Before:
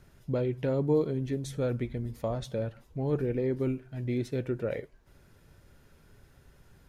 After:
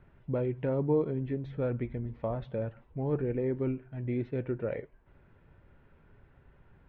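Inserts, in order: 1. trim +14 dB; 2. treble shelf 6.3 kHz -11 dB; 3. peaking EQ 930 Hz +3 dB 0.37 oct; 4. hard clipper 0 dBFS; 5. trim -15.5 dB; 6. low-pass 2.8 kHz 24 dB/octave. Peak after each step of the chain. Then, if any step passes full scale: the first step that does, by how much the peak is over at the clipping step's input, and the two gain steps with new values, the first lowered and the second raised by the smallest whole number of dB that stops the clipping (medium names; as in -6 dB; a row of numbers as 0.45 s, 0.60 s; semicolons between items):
-2.5 dBFS, -2.5 dBFS, -2.5 dBFS, -2.5 dBFS, -18.0 dBFS, -18.0 dBFS; nothing clips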